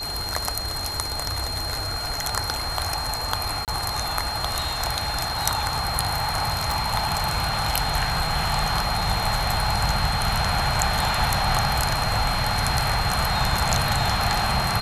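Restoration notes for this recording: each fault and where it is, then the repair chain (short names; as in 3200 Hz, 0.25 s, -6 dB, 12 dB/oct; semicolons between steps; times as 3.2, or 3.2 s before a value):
tone 4200 Hz -29 dBFS
3.65–3.68 gap 28 ms
6.72 pop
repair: de-click; notch 4200 Hz, Q 30; interpolate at 3.65, 28 ms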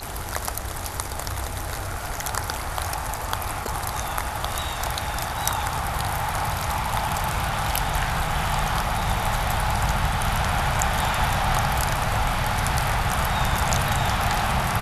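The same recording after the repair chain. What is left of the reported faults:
6.72 pop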